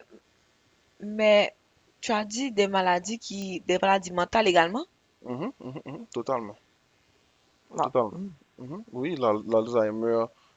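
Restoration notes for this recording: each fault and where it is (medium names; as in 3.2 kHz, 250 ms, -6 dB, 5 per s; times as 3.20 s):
3.42 s: pop -23 dBFS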